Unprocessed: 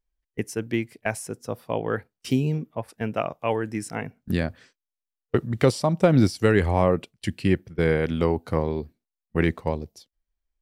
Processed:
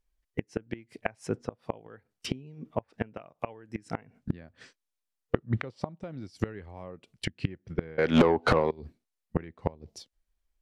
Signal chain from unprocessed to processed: inverted gate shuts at -17 dBFS, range -26 dB; low-pass that closes with the level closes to 2.8 kHz, closed at -34.5 dBFS; 7.98–8.71 s: overdrive pedal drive 37 dB, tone 2.1 kHz, clips at -12 dBFS; trim +3 dB

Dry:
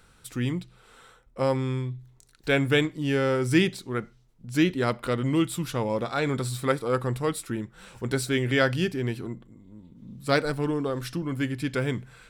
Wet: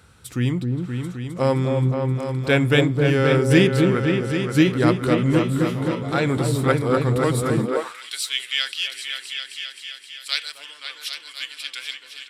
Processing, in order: 5.39–6.12 s: feedback comb 88 Hz, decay 0.46 s, harmonics all, mix 90%; delay with an opening low-pass 262 ms, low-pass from 750 Hz, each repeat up 2 oct, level -3 dB; high-pass sweep 76 Hz -> 3.1 kHz, 7.51–8.03 s; resampled via 32 kHz; trim +4 dB

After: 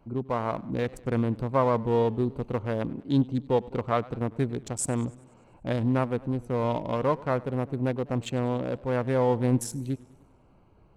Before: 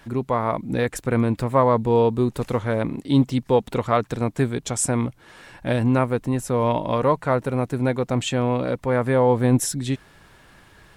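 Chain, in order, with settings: local Wiener filter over 25 samples; modulated delay 98 ms, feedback 58%, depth 141 cents, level -21.5 dB; trim -5.5 dB

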